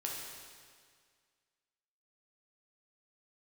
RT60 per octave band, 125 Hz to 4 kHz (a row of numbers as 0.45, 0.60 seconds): 1.9, 1.9, 1.9, 1.9, 1.9, 1.8 seconds